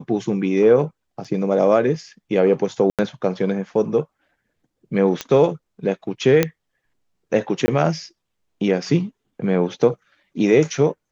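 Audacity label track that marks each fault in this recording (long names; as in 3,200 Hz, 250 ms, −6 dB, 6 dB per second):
1.240000	1.250000	drop-out 5.9 ms
2.900000	2.990000	drop-out 87 ms
5.210000	5.210000	click −9 dBFS
6.430000	6.430000	click −3 dBFS
7.660000	7.680000	drop-out 20 ms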